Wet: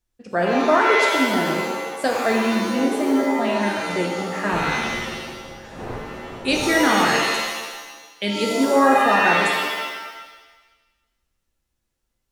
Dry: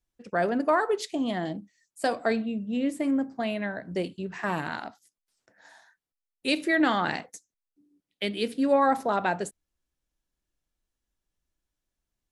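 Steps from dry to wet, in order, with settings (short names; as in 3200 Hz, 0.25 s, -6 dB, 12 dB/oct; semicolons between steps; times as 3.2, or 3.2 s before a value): 4.51–6.68 wind noise 570 Hz -41 dBFS; shimmer reverb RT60 1.2 s, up +7 st, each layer -2 dB, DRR 0.5 dB; gain +3.5 dB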